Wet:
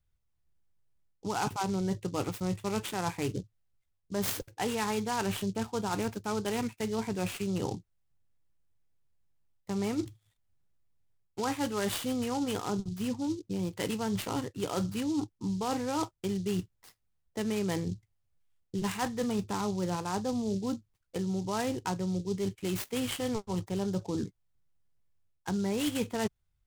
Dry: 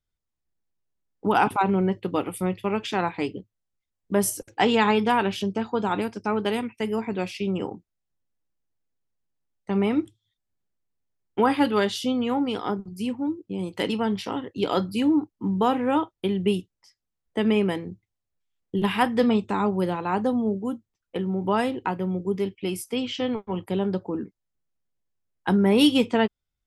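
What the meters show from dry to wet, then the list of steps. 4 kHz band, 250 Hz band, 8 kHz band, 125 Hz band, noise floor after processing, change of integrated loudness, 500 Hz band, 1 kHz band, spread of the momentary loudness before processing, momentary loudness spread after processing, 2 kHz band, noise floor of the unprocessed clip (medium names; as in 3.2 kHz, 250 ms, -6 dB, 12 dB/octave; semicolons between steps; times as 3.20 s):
-8.0 dB, -8.0 dB, -1.0 dB, -4.0 dB, -77 dBFS, -8.0 dB, -9.0 dB, -9.5 dB, 10 LU, 5 LU, -9.5 dB, -83 dBFS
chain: resonant low shelf 170 Hz +7 dB, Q 1.5; reverse; compression 6:1, threshold -30 dBFS, peak gain reduction 14 dB; reverse; delay time shaken by noise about 5 kHz, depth 0.048 ms; trim +1 dB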